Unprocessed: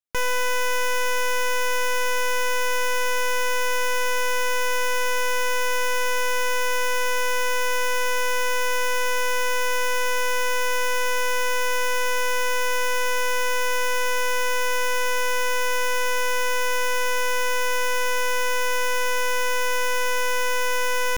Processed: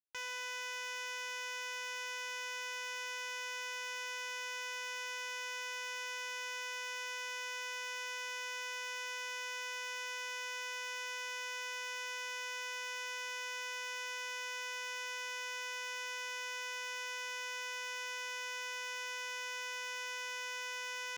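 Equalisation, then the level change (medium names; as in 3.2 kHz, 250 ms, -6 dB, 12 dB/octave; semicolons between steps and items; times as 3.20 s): high-pass 62 Hz; distance through air 160 m; pre-emphasis filter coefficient 0.97; -2.0 dB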